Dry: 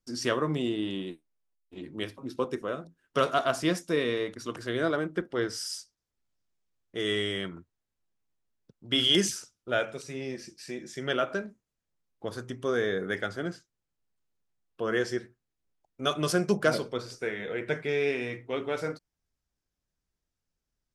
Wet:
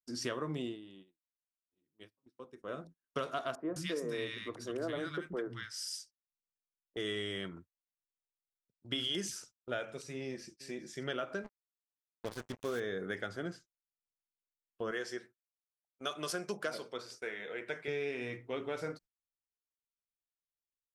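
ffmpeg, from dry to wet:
-filter_complex "[0:a]asettb=1/sr,asplit=3[s0][s1][s2];[s0]atrim=end=3.554[s3];[s1]atrim=start=3.55:end=6.97,asetpts=PTS-STARTPTS,afade=t=in:d=0.004:c=qsin,afade=t=out:st=3.416:d=0.004:c=qsin,acrossover=split=210|1300[s4][s5][s6];[s4]adelay=130[s7];[s6]adelay=210[s8];[s7][s5][s8]amix=inputs=3:normalize=0,atrim=end_sample=150822[s9];[s2]atrim=start=6.966[s10];[s3][s9]acrossfade=d=0.004:c1=hsin:c2=qsin[s11];[s11][s10]acrossfade=d=0.004:c1=qsin:c2=hsin,asplit=2[s12][s13];[s13]afade=t=in:st=10.19:d=0.01,afade=t=out:st=10.62:d=0.01,aecho=0:1:410|820:0.133352|0.0200028[s14];[s12][s14]amix=inputs=2:normalize=0,asettb=1/sr,asplit=3[s15][s16][s17];[s15]atrim=end=11.444[s18];[s16]atrim=start=11.44:end=12.8,asetpts=PTS-STARTPTS,afade=t=in:d=0.004:c=qsin,afade=t=out:st=1.356:d=0.004:c=qsin,acrusher=bits=5:mix=0:aa=0.5[s19];[s17]atrim=start=12.796[s20];[s18][s19]acrossfade=d=0.004:c1=hsin:c2=qsin[s21];[s21][s20]acrossfade=d=0.004:c1=qsin:c2=hsin,asettb=1/sr,asplit=3[s22][s23][s24];[s22]atrim=end=14.914[s25];[s23]atrim=start=14.91:end=17.88,asetpts=PTS-STARTPTS,afade=t=in:d=0.004:c=qsin,afade=t=out:st=2.966:d=0.004:c=qsin,highpass=f=550:p=1[s26];[s24]atrim=start=17.876[s27];[s25][s26]acrossfade=d=0.004:c1=hsin:c2=qsin[s28];[s28][s27]acrossfade=d=0.004:c1=qsin:c2=hsin,asplit=3[s29][s30][s31];[s29]atrim=end=0.8,asetpts=PTS-STARTPTS,afade=t=out:st=0.6:d=0.2:silence=0.16788[s32];[s30]atrim=start=0.8:end=2.58,asetpts=PTS-STARTPTS,volume=0.168[s33];[s31]atrim=start=2.58,asetpts=PTS-STARTPTS,afade=t=in:d=0.2:silence=0.16788[s34];[s32][s33][s34]concat=n=3:v=0:a=1,agate=range=0.0794:threshold=0.00355:ratio=16:detection=peak,acompressor=threshold=0.0398:ratio=5,volume=0.562"

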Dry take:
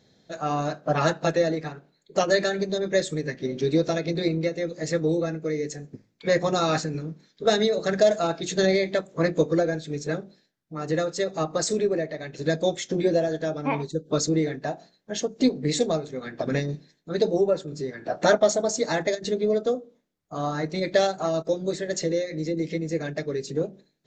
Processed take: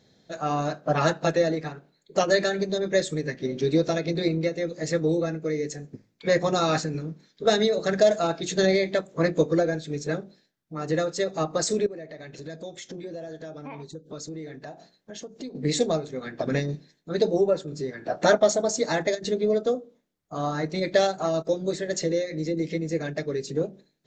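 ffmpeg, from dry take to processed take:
-filter_complex "[0:a]asettb=1/sr,asplit=3[s0][s1][s2];[s0]atrim=end=11.864[s3];[s1]atrim=start=11.86:end=15.55,asetpts=PTS-STARTPTS,afade=t=in:d=0.004:c=qsin,afade=t=out:st=3.686:d=0.004:c=qsin,acompressor=threshold=0.0112:ratio=3:attack=3.2:release=140:knee=1:detection=peak[s4];[s2]atrim=start=15.546[s5];[s3][s4]acrossfade=d=0.004:c1=hsin:c2=qsin[s6];[s6][s5]acrossfade=d=0.004:c1=qsin:c2=hsin"

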